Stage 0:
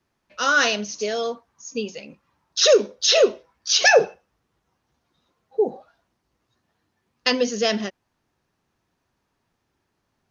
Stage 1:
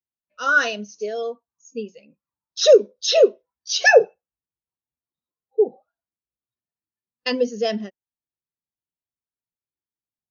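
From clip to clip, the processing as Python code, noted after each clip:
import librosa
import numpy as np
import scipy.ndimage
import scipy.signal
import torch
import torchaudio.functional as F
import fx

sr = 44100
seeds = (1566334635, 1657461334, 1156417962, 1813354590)

y = fx.spectral_expand(x, sr, expansion=1.5)
y = F.gain(torch.from_numpy(y), 1.5).numpy()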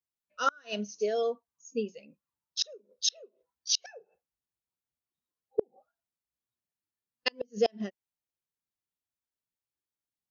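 y = fx.gate_flip(x, sr, shuts_db=-11.0, range_db=-36)
y = F.gain(torch.from_numpy(y), -2.0).numpy()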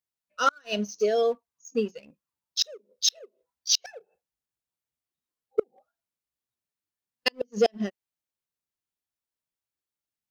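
y = fx.leveller(x, sr, passes=1)
y = F.gain(torch.from_numpy(y), 2.0).numpy()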